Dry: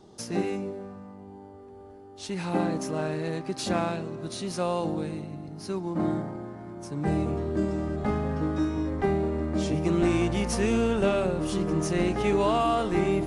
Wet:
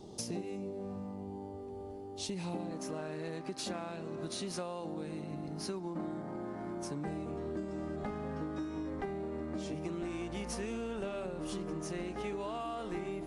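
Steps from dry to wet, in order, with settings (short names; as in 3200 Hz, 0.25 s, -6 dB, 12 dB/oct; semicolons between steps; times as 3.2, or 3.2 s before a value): bell 1500 Hz -11 dB 0.87 oct, from 2.71 s 97 Hz; compressor 10:1, threshold -39 dBFS, peak gain reduction 19 dB; gain +3 dB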